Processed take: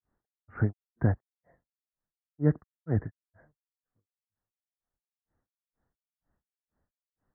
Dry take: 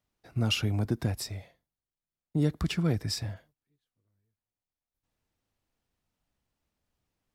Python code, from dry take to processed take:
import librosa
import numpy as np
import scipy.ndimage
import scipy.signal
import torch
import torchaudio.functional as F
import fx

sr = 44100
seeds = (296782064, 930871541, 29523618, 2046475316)

y = scipy.signal.sosfilt(scipy.signal.butter(16, 1900.0, 'lowpass', fs=sr, output='sos'), x)
y = fx.granulator(y, sr, seeds[0], grain_ms=260.0, per_s=2.1, spray_ms=12.0, spread_st=0)
y = y * 10.0 ** (6.0 / 20.0)